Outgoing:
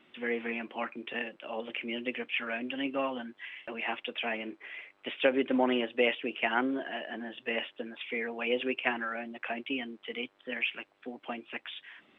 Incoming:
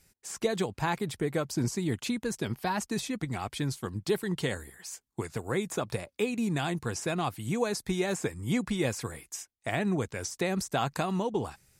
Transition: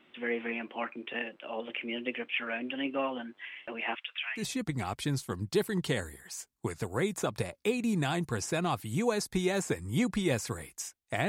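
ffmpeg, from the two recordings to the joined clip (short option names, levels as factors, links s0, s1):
-filter_complex "[0:a]asettb=1/sr,asplit=3[s0][s1][s2];[s0]atrim=end=3.954[s3];[s1]atrim=start=3.95:end=4.48,asetpts=PTS-STARTPTS,afade=t=in:d=0.004:c=qsin,afade=t=out:st=0.526:d=0.004:c=qsin,highpass=f=1300:w=0.5412,highpass=f=1300:w=1.3066[s4];[s2]atrim=start=4.476[s5];[s3][s4]acrossfade=d=0.004:c1=hsin:c2=qsin[s6];[s6][s5]acrossfade=d=0.004:c1=qsin:c2=hsin,apad=whole_dur=11.28,atrim=end=11.28,atrim=end=4.48,asetpts=PTS-STARTPTS[s7];[1:a]atrim=start=2.86:end=9.82,asetpts=PTS-STARTPTS[s8];[s7][s8]acrossfade=d=0.16:c1=tri:c2=tri"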